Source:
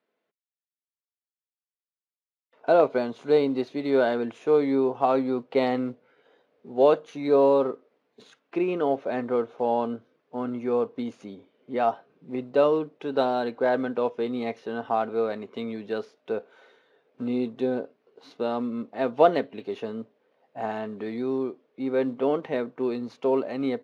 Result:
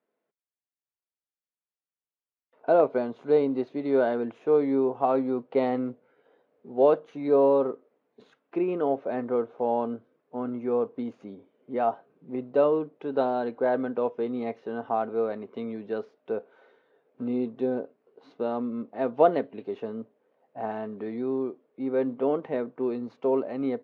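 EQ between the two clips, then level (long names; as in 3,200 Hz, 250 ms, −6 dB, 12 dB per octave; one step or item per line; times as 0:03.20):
low-pass filter 1,100 Hz 6 dB per octave
low-shelf EQ 160 Hz −3.5 dB
0.0 dB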